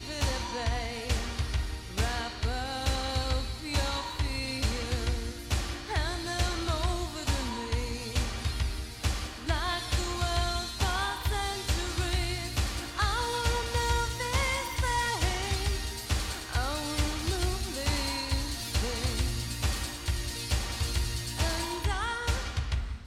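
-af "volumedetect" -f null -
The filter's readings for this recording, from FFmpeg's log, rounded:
mean_volume: -30.5 dB
max_volume: -14.7 dB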